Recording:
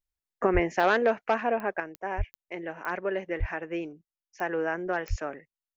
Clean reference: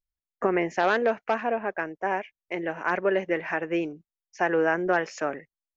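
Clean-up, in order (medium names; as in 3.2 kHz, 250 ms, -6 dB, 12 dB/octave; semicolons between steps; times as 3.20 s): de-click; de-plosive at 0.53/2.17/3.39/5.09 s; gain correction +6 dB, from 1.80 s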